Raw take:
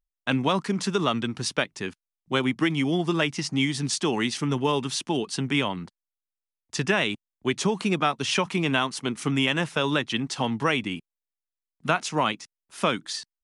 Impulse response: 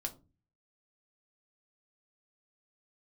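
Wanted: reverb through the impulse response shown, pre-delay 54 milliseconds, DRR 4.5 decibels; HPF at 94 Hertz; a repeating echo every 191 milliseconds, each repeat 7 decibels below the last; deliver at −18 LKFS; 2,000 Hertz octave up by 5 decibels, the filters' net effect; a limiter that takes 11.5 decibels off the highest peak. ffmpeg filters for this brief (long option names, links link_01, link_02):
-filter_complex "[0:a]highpass=94,equalizer=frequency=2000:width_type=o:gain=6.5,alimiter=limit=-17dB:level=0:latency=1,aecho=1:1:191|382|573|764|955:0.447|0.201|0.0905|0.0407|0.0183,asplit=2[link_01][link_02];[1:a]atrim=start_sample=2205,adelay=54[link_03];[link_02][link_03]afir=irnorm=-1:irlink=0,volume=-4dB[link_04];[link_01][link_04]amix=inputs=2:normalize=0,volume=8dB"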